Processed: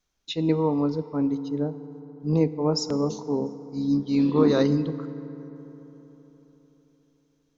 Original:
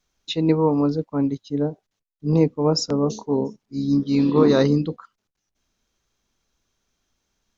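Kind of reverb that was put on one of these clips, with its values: FDN reverb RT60 4 s, high-frequency decay 0.45×, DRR 13.5 dB; trim -4.5 dB

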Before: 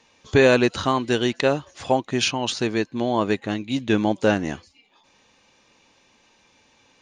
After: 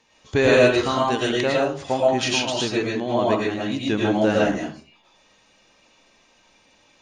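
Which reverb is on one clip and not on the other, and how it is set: algorithmic reverb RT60 0.41 s, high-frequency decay 0.5×, pre-delay 70 ms, DRR -4.5 dB; trim -4 dB

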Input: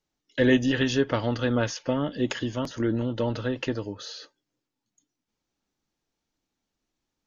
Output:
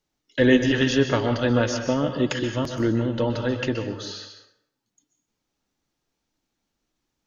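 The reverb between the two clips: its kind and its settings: plate-style reverb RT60 0.67 s, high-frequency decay 0.75×, pre-delay 115 ms, DRR 6.5 dB; trim +3 dB

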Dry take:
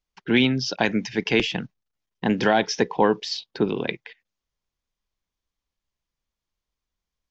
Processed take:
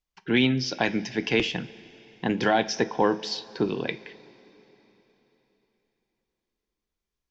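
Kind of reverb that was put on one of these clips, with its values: two-slope reverb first 0.26 s, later 3.8 s, from -19 dB, DRR 10 dB; trim -3 dB

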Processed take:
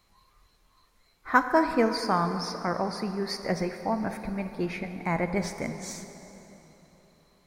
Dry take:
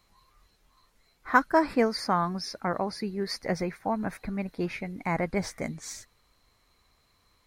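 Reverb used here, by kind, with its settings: plate-style reverb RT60 3.7 s, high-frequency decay 0.7×, DRR 7.5 dB

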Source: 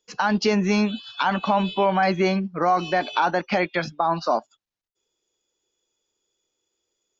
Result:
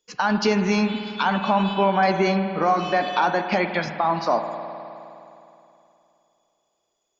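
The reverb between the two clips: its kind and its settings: spring tank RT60 2.9 s, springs 51 ms, chirp 30 ms, DRR 7 dB

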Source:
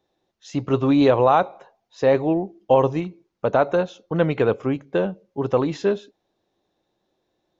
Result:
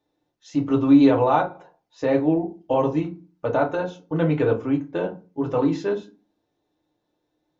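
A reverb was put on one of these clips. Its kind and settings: FDN reverb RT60 0.3 s, low-frequency decay 1.5×, high-frequency decay 0.6×, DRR 0 dB; trim -6 dB

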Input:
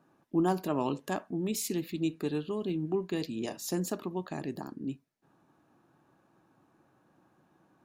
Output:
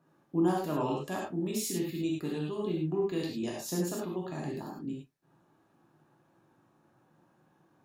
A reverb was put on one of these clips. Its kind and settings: gated-style reverb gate 130 ms flat, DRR -3 dB; trim -5 dB

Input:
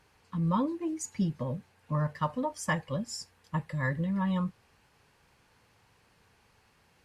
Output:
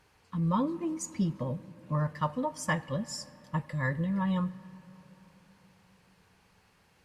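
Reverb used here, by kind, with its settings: algorithmic reverb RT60 4.1 s, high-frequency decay 0.4×, pre-delay 20 ms, DRR 18 dB

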